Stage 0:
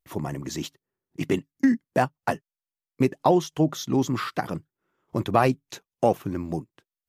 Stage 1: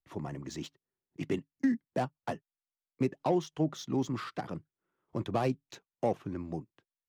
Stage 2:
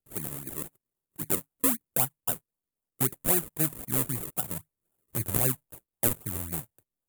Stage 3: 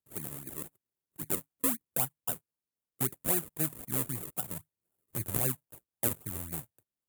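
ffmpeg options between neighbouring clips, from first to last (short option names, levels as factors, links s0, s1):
-filter_complex "[0:a]acrossover=split=210|720|4200[s0][s1][s2][s3];[s2]asoftclip=type=tanh:threshold=0.0422[s4];[s0][s1][s4][s3]amix=inputs=4:normalize=0,adynamicsmooth=sensitivity=7:basefreq=5400,volume=0.398"
-af "asubboost=boost=4:cutoff=120,acrusher=samples=40:mix=1:aa=0.000001:lfo=1:lforange=40:lforate=3.8,aexciter=amount=11.2:drive=5.5:freq=7700,volume=0.841"
-af "highpass=48,volume=0.596"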